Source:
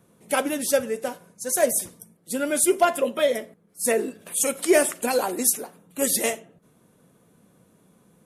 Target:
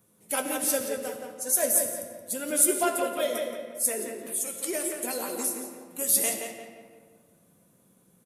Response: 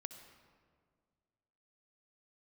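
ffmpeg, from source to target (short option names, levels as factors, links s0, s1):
-filter_complex "[0:a]aemphasis=mode=production:type=50kf,asettb=1/sr,asplit=3[s0][s1][s2];[s0]atrim=end=3.864[s3];[s1]atrim=start=3.86:end=6.09,asetpts=PTS-STARTPTS,afade=t=in:d=0.004:c=qsin,afade=t=out:st=2.226:d=0.004:c=qsin,acompressor=threshold=0.112:ratio=6[s4];[s2]atrim=start=6.086[s5];[s3][s4]acrossfade=d=0.004:c1=hsin:c2=qsin[s6];[s6][s5]acrossfade=d=0.004:c1=qsin:c2=hsin,flanger=delay=9.4:depth=7.7:regen=53:speed=0.43:shape=sinusoidal,asplit=2[s7][s8];[s8]adelay=174,lowpass=f=2700:p=1,volume=0.596,asplit=2[s9][s10];[s10]adelay=174,lowpass=f=2700:p=1,volume=0.37,asplit=2[s11][s12];[s12]adelay=174,lowpass=f=2700:p=1,volume=0.37,asplit=2[s13][s14];[s14]adelay=174,lowpass=f=2700:p=1,volume=0.37,asplit=2[s15][s16];[s16]adelay=174,lowpass=f=2700:p=1,volume=0.37[s17];[s7][s9][s11][s13][s15][s17]amix=inputs=6:normalize=0[s18];[1:a]atrim=start_sample=2205,asetrate=43218,aresample=44100[s19];[s18][s19]afir=irnorm=-1:irlink=0"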